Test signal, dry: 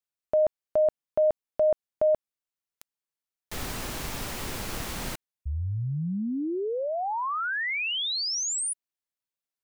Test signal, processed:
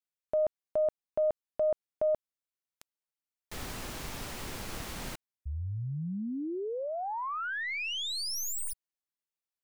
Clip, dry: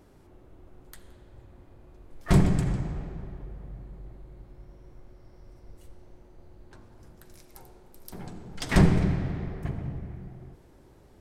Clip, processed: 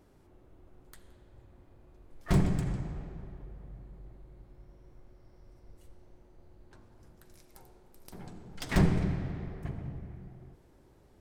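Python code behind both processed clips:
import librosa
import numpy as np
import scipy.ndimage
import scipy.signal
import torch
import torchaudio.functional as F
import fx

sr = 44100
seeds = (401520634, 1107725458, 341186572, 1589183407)

y = fx.tracing_dist(x, sr, depth_ms=0.038)
y = F.gain(torch.from_numpy(y), -5.5).numpy()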